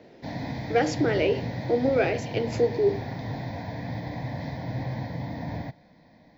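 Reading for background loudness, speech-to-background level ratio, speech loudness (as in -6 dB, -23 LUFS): -34.0 LUFS, 8.0 dB, -26.0 LUFS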